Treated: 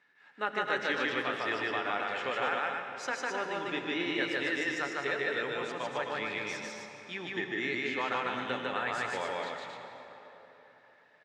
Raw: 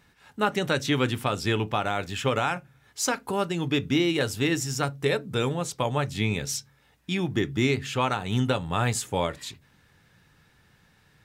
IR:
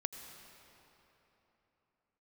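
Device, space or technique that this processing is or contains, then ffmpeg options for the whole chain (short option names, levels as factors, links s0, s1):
station announcement: -filter_complex "[0:a]highpass=360,lowpass=4000,equalizer=f=1800:t=o:w=0.55:g=9,aecho=1:1:151.6|262.4:0.891|0.562[s0];[1:a]atrim=start_sample=2205[s1];[s0][s1]afir=irnorm=-1:irlink=0,volume=0.376"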